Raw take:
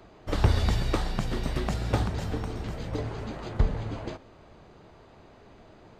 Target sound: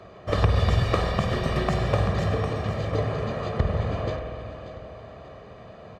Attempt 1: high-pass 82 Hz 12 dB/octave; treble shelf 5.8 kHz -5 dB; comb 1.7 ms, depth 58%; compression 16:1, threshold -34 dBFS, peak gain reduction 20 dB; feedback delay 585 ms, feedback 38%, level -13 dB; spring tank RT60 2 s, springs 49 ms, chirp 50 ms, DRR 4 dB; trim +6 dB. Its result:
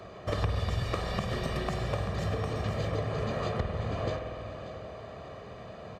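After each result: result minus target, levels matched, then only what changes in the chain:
compression: peak gain reduction +10 dB; 8 kHz band +4.5 dB
change: compression 16:1, threshold -23.5 dBFS, peak gain reduction 10 dB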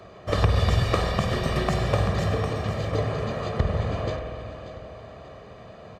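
8 kHz band +4.0 dB
change: treble shelf 5.8 kHz -12.5 dB

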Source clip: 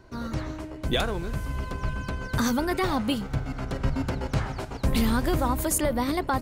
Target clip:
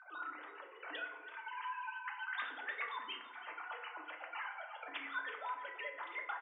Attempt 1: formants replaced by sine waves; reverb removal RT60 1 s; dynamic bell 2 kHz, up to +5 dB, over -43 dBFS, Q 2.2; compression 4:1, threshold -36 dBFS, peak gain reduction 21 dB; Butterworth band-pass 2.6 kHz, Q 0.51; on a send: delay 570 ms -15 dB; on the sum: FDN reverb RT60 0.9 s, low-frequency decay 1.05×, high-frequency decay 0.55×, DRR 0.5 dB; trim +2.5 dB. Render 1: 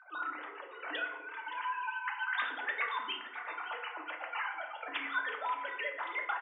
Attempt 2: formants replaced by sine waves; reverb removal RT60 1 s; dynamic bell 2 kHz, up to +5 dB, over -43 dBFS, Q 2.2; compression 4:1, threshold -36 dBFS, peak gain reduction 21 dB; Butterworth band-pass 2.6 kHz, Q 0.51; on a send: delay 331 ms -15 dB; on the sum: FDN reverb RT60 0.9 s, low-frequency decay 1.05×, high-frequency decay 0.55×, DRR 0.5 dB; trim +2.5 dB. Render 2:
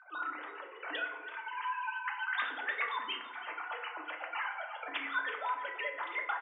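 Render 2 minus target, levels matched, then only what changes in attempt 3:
compression: peak gain reduction -7 dB
change: compression 4:1, threshold -45 dBFS, peak gain reduction 28 dB

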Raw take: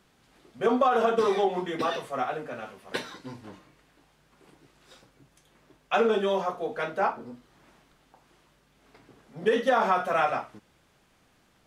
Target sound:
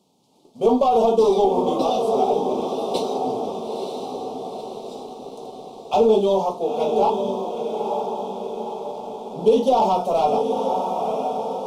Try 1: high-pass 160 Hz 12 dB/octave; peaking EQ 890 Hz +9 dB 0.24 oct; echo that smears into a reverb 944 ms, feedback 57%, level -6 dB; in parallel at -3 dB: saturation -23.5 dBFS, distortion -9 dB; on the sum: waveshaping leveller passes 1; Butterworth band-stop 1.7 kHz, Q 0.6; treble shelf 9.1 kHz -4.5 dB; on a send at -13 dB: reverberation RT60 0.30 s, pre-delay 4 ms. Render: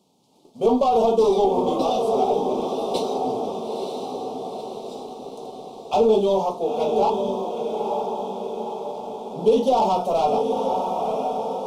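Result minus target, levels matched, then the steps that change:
saturation: distortion +9 dB
change: saturation -15 dBFS, distortion -18 dB

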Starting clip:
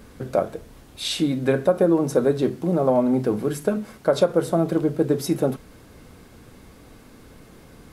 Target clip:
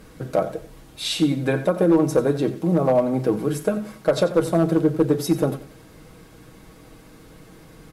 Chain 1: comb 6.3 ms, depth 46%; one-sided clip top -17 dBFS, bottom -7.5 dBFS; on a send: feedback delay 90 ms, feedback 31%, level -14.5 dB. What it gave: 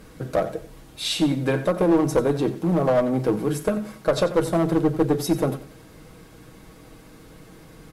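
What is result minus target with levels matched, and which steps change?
one-sided clip: distortion +9 dB
change: one-sided clip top -10.5 dBFS, bottom -7.5 dBFS

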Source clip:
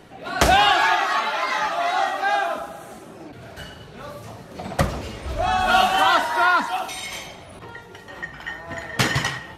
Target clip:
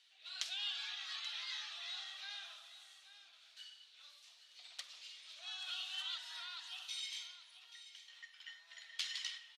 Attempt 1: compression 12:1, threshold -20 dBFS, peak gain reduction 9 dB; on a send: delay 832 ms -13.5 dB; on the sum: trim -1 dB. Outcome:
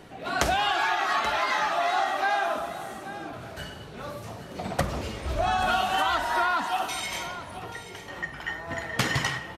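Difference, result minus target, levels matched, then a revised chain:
4 kHz band -9.0 dB
compression 12:1, threshold -20 dBFS, peak gain reduction 9 dB; ladder band-pass 4.3 kHz, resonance 45%; on a send: delay 832 ms -13.5 dB; on the sum: trim -1 dB

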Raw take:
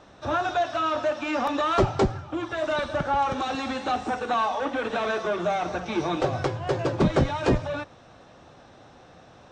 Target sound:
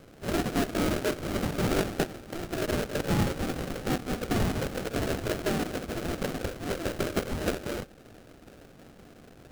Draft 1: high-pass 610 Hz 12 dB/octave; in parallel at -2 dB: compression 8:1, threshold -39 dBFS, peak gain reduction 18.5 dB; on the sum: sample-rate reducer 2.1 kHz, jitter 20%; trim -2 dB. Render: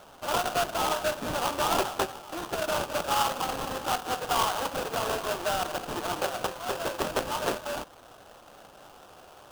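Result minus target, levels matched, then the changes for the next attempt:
sample-rate reducer: distortion -10 dB
change: sample-rate reducer 1 kHz, jitter 20%

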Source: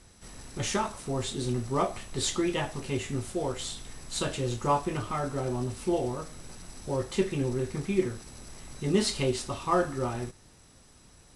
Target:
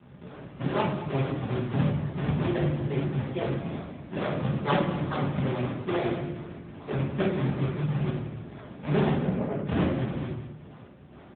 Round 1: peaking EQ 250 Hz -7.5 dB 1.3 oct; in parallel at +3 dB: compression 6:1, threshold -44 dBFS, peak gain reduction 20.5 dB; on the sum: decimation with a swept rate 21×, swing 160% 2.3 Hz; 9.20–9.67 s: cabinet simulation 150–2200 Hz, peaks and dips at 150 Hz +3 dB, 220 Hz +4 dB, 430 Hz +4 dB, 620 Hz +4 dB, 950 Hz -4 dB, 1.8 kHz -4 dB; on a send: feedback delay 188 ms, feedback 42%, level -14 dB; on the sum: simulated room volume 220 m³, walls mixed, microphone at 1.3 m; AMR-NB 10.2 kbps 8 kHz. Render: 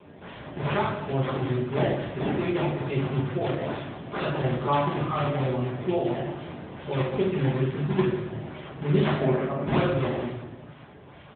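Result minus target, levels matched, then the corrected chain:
compression: peak gain reduction -8.5 dB; decimation with a swept rate: distortion -9 dB
peaking EQ 250 Hz -7.5 dB 1.3 oct; in parallel at +3 dB: compression 6:1, threshold -54 dBFS, peak gain reduction 28.5 dB; on the sum: decimation with a swept rate 75×, swing 160% 2.3 Hz; 9.20–9.67 s: cabinet simulation 150–2200 Hz, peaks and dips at 150 Hz +3 dB, 220 Hz +4 dB, 430 Hz +4 dB, 620 Hz +4 dB, 950 Hz -4 dB, 1.8 kHz -4 dB; on a send: feedback delay 188 ms, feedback 42%, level -14 dB; on the sum: simulated room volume 220 m³, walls mixed, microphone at 1.3 m; AMR-NB 10.2 kbps 8 kHz

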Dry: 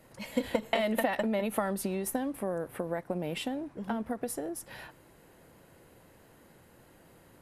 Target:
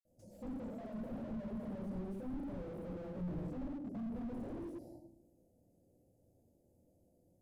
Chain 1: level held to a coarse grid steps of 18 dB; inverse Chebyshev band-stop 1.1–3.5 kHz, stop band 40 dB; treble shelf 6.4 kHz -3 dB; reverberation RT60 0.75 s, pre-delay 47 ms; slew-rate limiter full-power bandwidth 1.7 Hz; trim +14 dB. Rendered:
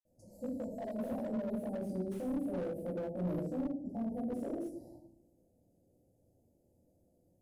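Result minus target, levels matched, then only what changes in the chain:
slew-rate limiter: distortion -16 dB
change: slew-rate limiter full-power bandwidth 0.5 Hz

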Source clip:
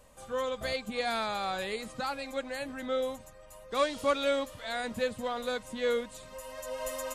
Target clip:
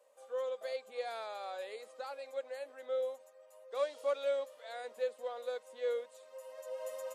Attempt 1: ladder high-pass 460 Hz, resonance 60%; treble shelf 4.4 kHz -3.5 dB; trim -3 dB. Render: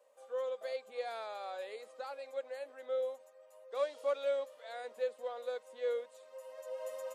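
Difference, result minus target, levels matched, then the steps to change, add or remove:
8 kHz band -2.5 dB
remove: treble shelf 4.4 kHz -3.5 dB

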